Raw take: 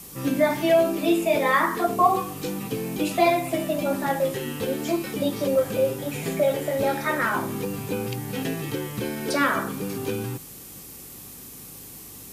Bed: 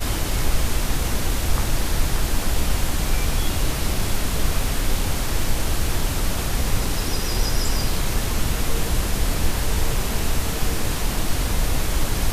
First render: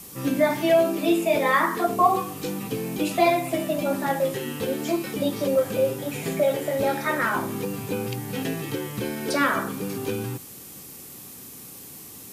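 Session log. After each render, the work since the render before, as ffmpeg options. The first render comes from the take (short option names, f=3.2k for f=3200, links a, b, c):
-af "bandreject=f=50:t=h:w=4,bandreject=f=100:t=h:w=4,bandreject=f=150:t=h:w=4"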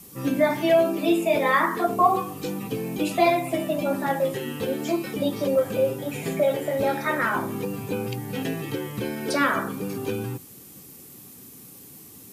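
-af "afftdn=nr=6:nf=-43"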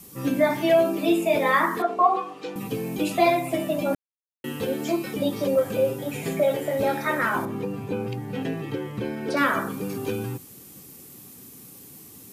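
-filter_complex "[0:a]asettb=1/sr,asplit=3[a][b][c];[a]atrim=end=1.824[d];[b]atrim=start=1.82:end=2.56,asetpts=PTS-STARTPTS,afade=t=in:d=0.004:c=qsin,afade=t=out:st=0.736:d=0.004:c=qsin,highpass=400,lowpass=3.8k[e];[c]atrim=start=2.556[f];[d][e]acrossfade=d=0.004:c1=hsin:c2=qsin[g];[g][f]acrossfade=d=0.004:c1=qsin:c2=hsin,asettb=1/sr,asplit=3[h][i][j];[h]atrim=end=7.454[k];[i]atrim=start=7.45:end=9.37,asetpts=PTS-STARTPTS,afade=t=in:d=0.004:c=qsin,afade=t=out:st=1.916:d=0.004:c=qsin,lowpass=f=2.2k:p=1[l];[j]atrim=start=9.366[m];[k][l]acrossfade=d=0.004:c1=hsin:c2=qsin[n];[n][m]acrossfade=d=0.004:c1=qsin:c2=hsin,asplit=3[o][p][q];[o]atrim=end=3.95,asetpts=PTS-STARTPTS,afade=t=out:st=3.946:d=0.004:c=hsin[r];[p]atrim=start=3.95:end=4.44,asetpts=PTS-STARTPTS,volume=0[s];[q]atrim=start=4.44,asetpts=PTS-STARTPTS,afade=t=in:d=0.004:c=hsin[t];[r][s][t]concat=n=3:v=0:a=1"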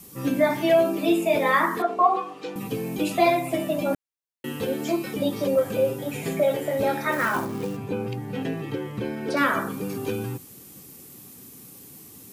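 -filter_complex "[0:a]asettb=1/sr,asplit=3[a][b][c];[a]atrim=end=7.124[d];[b]atrim=start=7.12:end=7.77,asetpts=PTS-STARTPTS,afade=t=in:d=0.004:c=qsin,afade=t=out:st=0.646:d=0.004:c=qsin,acrusher=bits=4:mode=log:mix=0:aa=0.000001[e];[c]atrim=start=7.766[f];[d][e]acrossfade=d=0.004:c1=hsin:c2=qsin[g];[g][f]acrossfade=d=0.004:c1=qsin:c2=hsin"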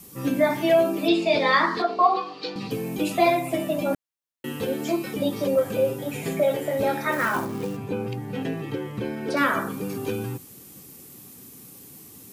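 -filter_complex "[0:a]asettb=1/sr,asplit=3[a][b][c];[a]atrim=end=1.084[d];[b]atrim=start=1.08:end=2.71,asetpts=PTS-STARTPTS,afade=t=in:d=0.004:c=qsin,afade=t=out:st=1.626:d=0.004:c=qsin,lowpass=f=4.5k:t=q:w=7.1[e];[c]atrim=start=2.706[f];[d][e]acrossfade=d=0.004:c1=hsin:c2=qsin[g];[g][f]acrossfade=d=0.004:c1=qsin:c2=hsin"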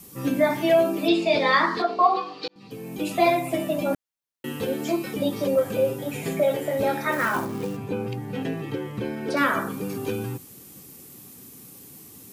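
-filter_complex "[0:a]asplit=2[a][b];[a]atrim=end=2.48,asetpts=PTS-STARTPTS,afade=t=out:st=2.476:d=0.004:c=hsin[c];[b]atrim=start=2.48,asetpts=PTS-STARTPTS,afade=t=in:d=0.77[d];[c][d]concat=n=2:v=0:a=1"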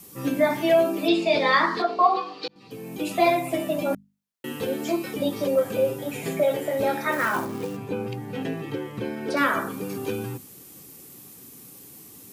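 -af "lowshelf=f=120:g=-4,bandreject=f=50:t=h:w=6,bandreject=f=100:t=h:w=6,bandreject=f=150:t=h:w=6,bandreject=f=200:t=h:w=6,bandreject=f=250:t=h:w=6"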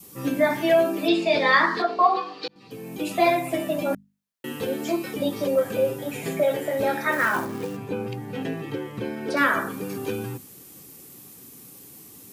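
-af "adynamicequalizer=threshold=0.00794:dfrequency=1700:dqfactor=3.9:tfrequency=1700:tqfactor=3.9:attack=5:release=100:ratio=0.375:range=2.5:mode=boostabove:tftype=bell"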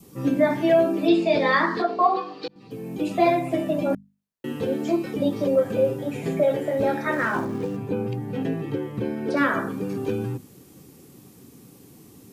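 -filter_complex "[0:a]acrossover=split=8100[a][b];[b]acompressor=threshold=-51dB:ratio=4:attack=1:release=60[c];[a][c]amix=inputs=2:normalize=0,tiltshelf=f=720:g=5"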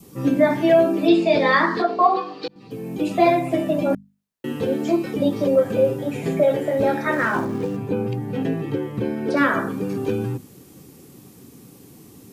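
-af "volume=3dB"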